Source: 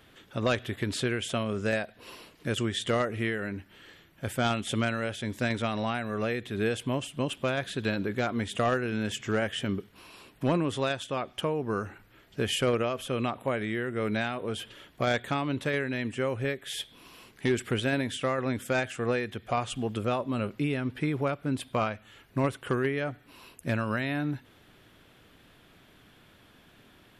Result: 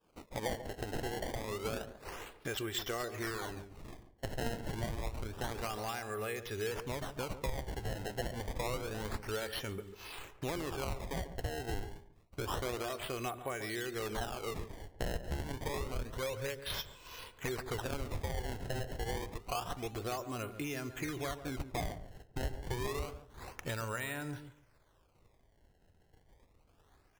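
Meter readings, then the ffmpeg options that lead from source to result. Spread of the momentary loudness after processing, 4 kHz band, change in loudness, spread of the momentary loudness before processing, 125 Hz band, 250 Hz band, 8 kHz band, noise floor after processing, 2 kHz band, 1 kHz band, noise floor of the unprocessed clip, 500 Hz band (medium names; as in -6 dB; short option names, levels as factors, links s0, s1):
8 LU, -7.5 dB, -9.5 dB, 8 LU, -8.5 dB, -12.5 dB, -3.5 dB, -68 dBFS, -9.5 dB, -8.0 dB, -59 dBFS, -9.5 dB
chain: -filter_complex "[0:a]bass=f=250:g=-9,treble=f=4000:g=5,aresample=22050,aresample=44100,flanger=delay=1.9:depth=1:regen=40:speed=0.12:shape=triangular,bandreject=f=199.5:t=h:w=4,bandreject=f=399:t=h:w=4,bandreject=f=598.5:t=h:w=4,bandreject=f=798:t=h:w=4,bandreject=f=997.5:t=h:w=4,bandreject=f=1197:t=h:w=4,bandreject=f=1396.5:t=h:w=4,acrusher=samples=21:mix=1:aa=0.000001:lfo=1:lforange=33.6:lforate=0.28,agate=range=0.0224:threshold=0.00316:ratio=3:detection=peak,asubboost=boost=4:cutoff=110,acompressor=threshold=0.002:ratio=2.5,asplit=2[s0][s1];[s1]adelay=142,lowpass=f=850:p=1,volume=0.335,asplit=2[s2][s3];[s3]adelay=142,lowpass=f=850:p=1,volume=0.18,asplit=2[s4][s5];[s5]adelay=142,lowpass=f=850:p=1,volume=0.18[s6];[s2][s4][s6]amix=inputs=3:normalize=0[s7];[s0][s7]amix=inputs=2:normalize=0,volume=3.55"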